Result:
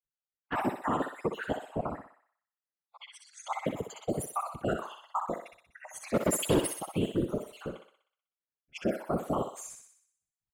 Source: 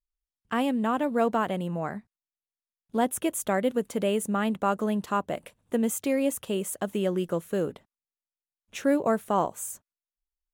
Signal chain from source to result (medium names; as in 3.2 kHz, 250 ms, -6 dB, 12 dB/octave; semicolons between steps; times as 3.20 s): random holes in the spectrogram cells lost 64%; level-controlled noise filter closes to 2.2 kHz, open at -29 dBFS; 2.96–3.51 s: low-pass 4.5 kHz -> 7.9 kHz 24 dB/octave; 4.57–5.09 s: level-controlled noise filter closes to 790 Hz, open at -27.5 dBFS; high-pass 43 Hz; 6.14–6.67 s: waveshaping leveller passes 3; peak limiter -20.5 dBFS, peak gain reduction 7 dB; whisper effect; thinning echo 62 ms, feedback 55%, high-pass 540 Hz, level -5 dB